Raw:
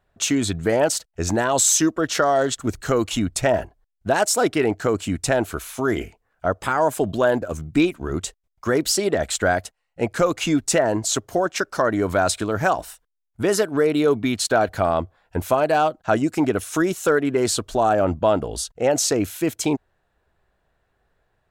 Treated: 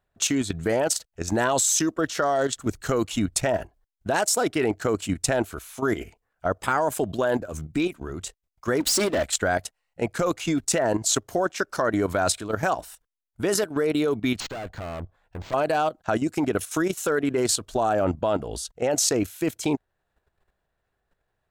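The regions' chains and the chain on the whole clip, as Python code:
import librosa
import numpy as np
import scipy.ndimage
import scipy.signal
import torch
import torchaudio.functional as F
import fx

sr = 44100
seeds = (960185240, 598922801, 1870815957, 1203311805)

y = fx.chain(x, sr, fx.comb(ms=3.4, depth=0.54),
    fx.level_steps(step_db=14),
    fx.leveller(passes=3), at=(8.8, 9.25))
y = fx.chain(y, sr, fx.low_shelf(hz=83.0, db=11.5),
    fx.tube_stage(drive_db=24.0, bias=0.7),
    fx.resample_linear(factor=4), at=(14.4, 15.54))
y = fx.high_shelf(y, sr, hz=3800.0, db=3.0)
y = fx.level_steps(y, sr, step_db=11)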